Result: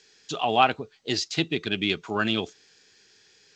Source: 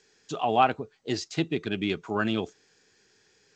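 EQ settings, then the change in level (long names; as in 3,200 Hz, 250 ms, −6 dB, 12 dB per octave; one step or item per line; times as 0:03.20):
parametric band 3,800 Hz +9 dB 1.9 octaves
0.0 dB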